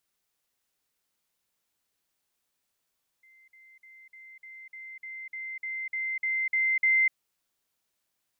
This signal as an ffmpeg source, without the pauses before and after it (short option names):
-f lavfi -i "aevalsrc='pow(10,(-55.5+3*floor(t/0.3))/20)*sin(2*PI*2080*t)*clip(min(mod(t,0.3),0.25-mod(t,0.3))/0.005,0,1)':d=3.9:s=44100"